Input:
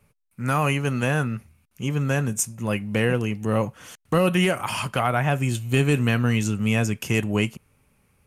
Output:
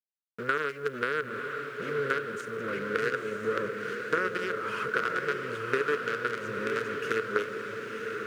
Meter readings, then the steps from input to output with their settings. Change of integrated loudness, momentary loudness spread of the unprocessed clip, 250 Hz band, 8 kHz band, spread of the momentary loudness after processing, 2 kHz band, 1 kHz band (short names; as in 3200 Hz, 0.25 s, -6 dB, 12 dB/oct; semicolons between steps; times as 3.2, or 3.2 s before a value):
-7.5 dB, 7 LU, -15.0 dB, -19.5 dB, 6 LU, -1.5 dB, -4.0 dB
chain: companded quantiser 2-bit; compressor 4:1, threshold -21 dBFS, peak gain reduction 13 dB; double band-pass 790 Hz, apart 1.7 oct; diffused feedback echo 0.969 s, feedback 55%, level -5 dB; requantised 12-bit, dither none; gain +7 dB